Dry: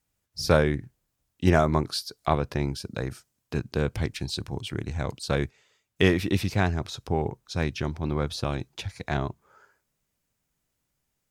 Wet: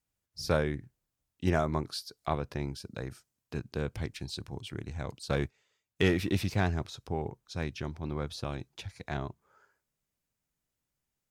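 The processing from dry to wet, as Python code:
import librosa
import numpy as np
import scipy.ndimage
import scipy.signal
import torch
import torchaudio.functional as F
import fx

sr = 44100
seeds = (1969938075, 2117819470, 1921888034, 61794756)

y = fx.leveller(x, sr, passes=1, at=(5.3, 6.86))
y = F.gain(torch.from_numpy(y), -7.5).numpy()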